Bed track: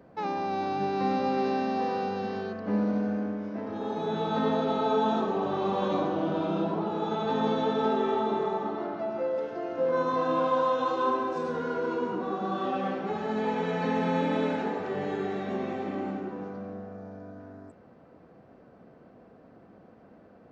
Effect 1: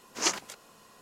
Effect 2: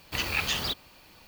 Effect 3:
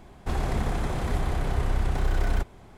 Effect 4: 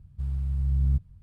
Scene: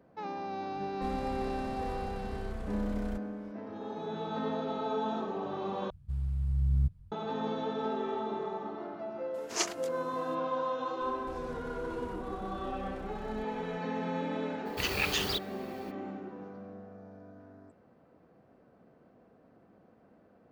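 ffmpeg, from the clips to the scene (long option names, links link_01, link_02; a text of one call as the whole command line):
ffmpeg -i bed.wav -i cue0.wav -i cue1.wav -i cue2.wav -i cue3.wav -filter_complex "[3:a]asplit=2[link_01][link_02];[0:a]volume=-7.5dB[link_03];[link_02]acompressor=threshold=-37dB:ratio=6:attack=3.2:release=140:knee=1:detection=peak[link_04];[link_03]asplit=2[link_05][link_06];[link_05]atrim=end=5.904[link_07];[4:a]atrim=end=1.22,asetpts=PTS-STARTPTS,volume=-3.5dB[link_08];[link_06]atrim=start=7.116[link_09];[link_01]atrim=end=2.77,asetpts=PTS-STARTPTS,volume=-15dB,afade=type=in:duration=0.004:curve=hsin,afade=type=out:start_time=2.766:duration=0.004:curve=hsin,adelay=750[link_10];[1:a]atrim=end=1.01,asetpts=PTS-STARTPTS,volume=-4.5dB,afade=type=in:duration=0.004:curve=hsin,afade=type=out:start_time=1.006:duration=0.004:curve=hsin,adelay=9340[link_11];[link_04]atrim=end=2.77,asetpts=PTS-STARTPTS,volume=-6.5dB,afade=type=in:duration=0.004:curve=hsin,afade=type=out:start_time=2.766:duration=0.004:curve=hsin,adelay=11010[link_12];[2:a]atrim=end=1.27,asetpts=PTS-STARTPTS,volume=-2.5dB,afade=type=in:duration=0.02,afade=type=out:start_time=1.25:duration=0.02,adelay=14650[link_13];[link_07][link_08]acrossfade=duration=0.004:curve1=hsin:curve2=hsin[link_14];[link_14][link_09]acrossfade=duration=0.004:curve1=hsin:curve2=hsin[link_15];[link_15][link_10][link_11][link_12][link_13]amix=inputs=5:normalize=0" out.wav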